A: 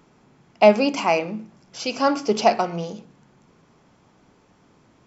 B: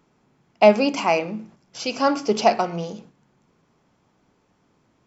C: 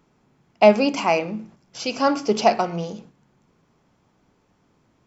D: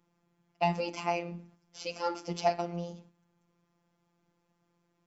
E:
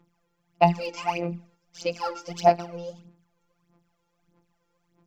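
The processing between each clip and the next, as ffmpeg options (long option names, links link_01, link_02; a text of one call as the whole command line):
ffmpeg -i in.wav -af "agate=range=-7dB:threshold=-46dB:ratio=16:detection=peak" out.wav
ffmpeg -i in.wav -af "lowshelf=frequency=110:gain=4.5" out.wav
ffmpeg -i in.wav -af "afftfilt=real='hypot(re,im)*cos(PI*b)':imag='0':win_size=1024:overlap=0.75,volume=-8.5dB" out.wav
ffmpeg -i in.wav -af "aphaser=in_gain=1:out_gain=1:delay=2.2:decay=0.75:speed=1.6:type=sinusoidal" out.wav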